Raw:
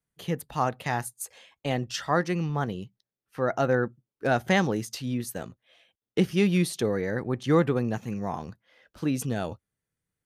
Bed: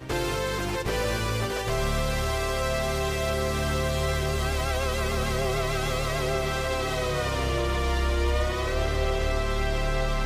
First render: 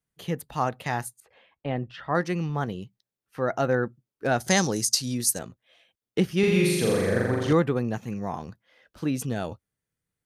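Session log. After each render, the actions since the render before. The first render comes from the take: 1.2–2.15 air absorption 450 m; 4.4–5.39 band shelf 7000 Hz +16 dB; 6.39–7.53 flutter echo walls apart 7.2 m, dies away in 1.4 s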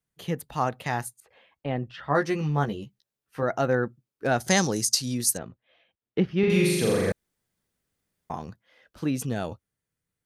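2.02–3.43 doubler 14 ms -4 dB; 5.37–6.5 air absorption 280 m; 7.12–8.3 room tone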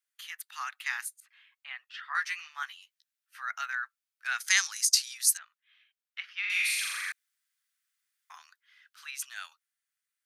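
steep high-pass 1300 Hz 36 dB/oct; dynamic EQ 2300 Hz, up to +5 dB, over -47 dBFS, Q 3.3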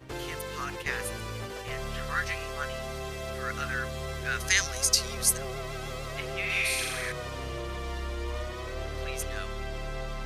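add bed -9.5 dB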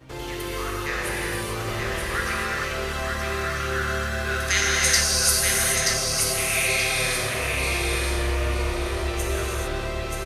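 feedback echo 0.929 s, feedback 31%, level -3.5 dB; non-linear reverb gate 0.47 s flat, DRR -5 dB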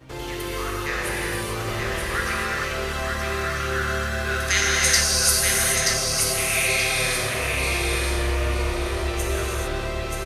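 gain +1 dB

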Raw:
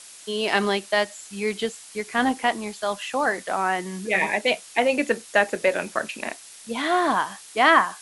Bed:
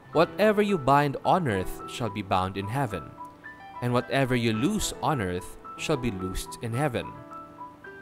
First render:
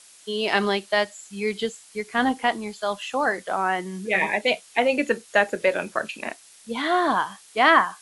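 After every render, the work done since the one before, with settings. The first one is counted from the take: noise print and reduce 6 dB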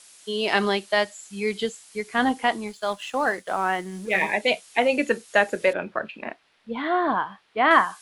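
2.67–4.32 G.711 law mismatch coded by A; 5.73–7.71 air absorption 380 m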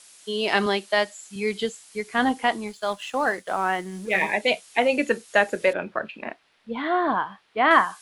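0.66–1.36 HPF 150 Hz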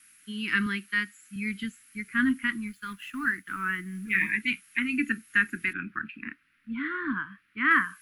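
Chebyshev band-stop 280–1400 Hz, order 3; band shelf 5300 Hz -14.5 dB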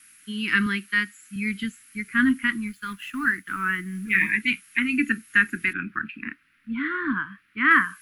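gain +4.5 dB

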